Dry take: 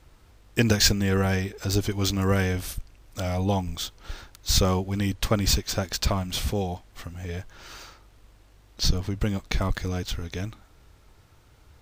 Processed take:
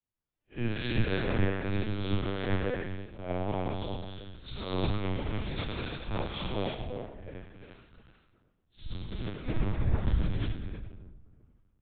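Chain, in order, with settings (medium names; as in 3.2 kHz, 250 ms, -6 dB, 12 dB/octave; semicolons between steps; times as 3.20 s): spectral blur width 155 ms; 9.42–10.26 s: bass shelf 250 Hz +10 dB; peak limiter -19 dBFS, peak gain reduction 9 dB; Chebyshev shaper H 3 -25 dB, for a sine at -19 dBFS; flange 0.33 Hz, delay 7.6 ms, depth 1.2 ms, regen +39%; two-band feedback delay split 490 Hz, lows 360 ms, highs 90 ms, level -5 dB; gated-style reverb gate 390 ms rising, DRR 0 dB; LPC vocoder at 8 kHz pitch kept; three bands expanded up and down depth 100%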